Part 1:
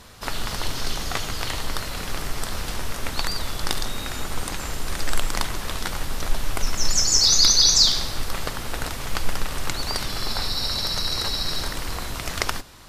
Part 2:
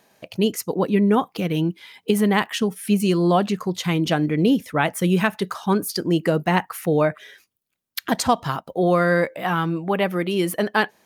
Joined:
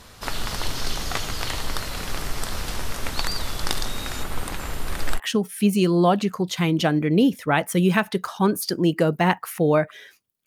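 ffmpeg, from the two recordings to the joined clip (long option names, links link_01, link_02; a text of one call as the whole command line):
ffmpeg -i cue0.wav -i cue1.wav -filter_complex "[0:a]asettb=1/sr,asplit=3[link_01][link_02][link_03];[link_01]atrim=end=4.234[link_04];[link_02]atrim=start=4.23:end=5.2,asetpts=PTS-STARTPTS,afade=type=in:duration=0.004:curve=qsin,afade=type=out:start_time=0.966:duration=0.004:curve=qsin,equalizer=frequency=6000:width_type=o:width=1.3:gain=-6.5[link_05];[link_03]atrim=start=5.196[link_06];[link_04][link_05]acrossfade=duration=0.004:curve1=hsin:curve2=qsin[link_07];[link_07][link_06]acrossfade=duration=0.004:curve1=qsin:curve2=hsin,apad=whole_dur=10.46,atrim=end=10.46,atrim=end=5.2,asetpts=PTS-STARTPTS[link_08];[1:a]atrim=start=2.41:end=7.73,asetpts=PTS-STARTPTS[link_09];[link_08][link_09]acrossfade=duration=0.06:curve1=tri:curve2=tri" out.wav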